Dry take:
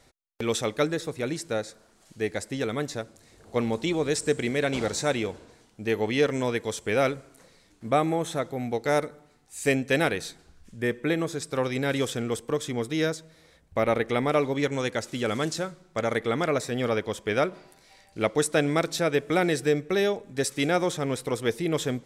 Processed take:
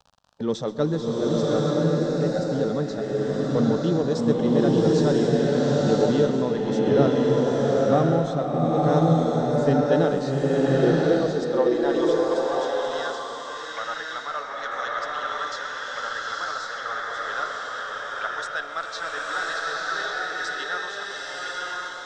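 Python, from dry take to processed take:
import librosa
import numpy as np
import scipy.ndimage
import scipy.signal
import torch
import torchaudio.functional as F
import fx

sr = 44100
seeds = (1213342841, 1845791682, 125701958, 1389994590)

p1 = fx.fade_out_tail(x, sr, length_s=1.46)
p2 = fx.noise_reduce_blind(p1, sr, reduce_db=24)
p3 = fx.filter_sweep_highpass(p2, sr, from_hz=160.0, to_hz=1500.0, start_s=9.83, end_s=12.77, q=2.4)
p4 = fx.dmg_crackle(p3, sr, seeds[0], per_s=48.0, level_db=-34.0)
p5 = fx.env_phaser(p4, sr, low_hz=330.0, high_hz=2300.0, full_db=-37.0)
p6 = fx.clip_asym(p5, sr, top_db=-36.5, bottom_db=-28.5)
p7 = p5 + (p6 * 10.0 ** (-8.5 / 20.0))
p8 = fx.air_absorb(p7, sr, metres=150.0)
p9 = p8 + 10.0 ** (-17.5 / 20.0) * np.pad(p8, (int(129 * sr / 1000.0), 0))[:len(p8)]
y = fx.rev_bloom(p9, sr, seeds[1], attack_ms=1040, drr_db=-5.0)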